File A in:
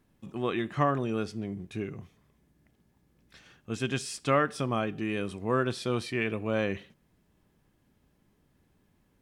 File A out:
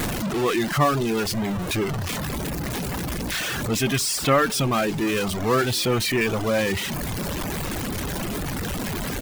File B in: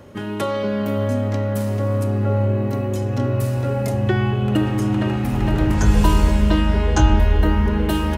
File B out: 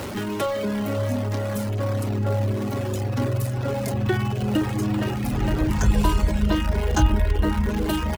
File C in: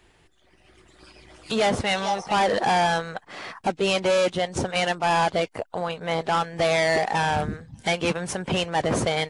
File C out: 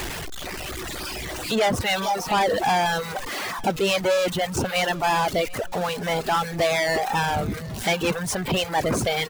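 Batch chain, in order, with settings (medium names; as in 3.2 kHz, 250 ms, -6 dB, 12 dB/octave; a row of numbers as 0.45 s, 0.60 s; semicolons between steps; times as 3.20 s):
jump at every zero crossing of -23 dBFS; reverb removal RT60 0.97 s; feedback delay 745 ms, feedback 31%, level -22.5 dB; normalise loudness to -24 LUFS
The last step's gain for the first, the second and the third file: +4.0 dB, -3.5 dB, -1.0 dB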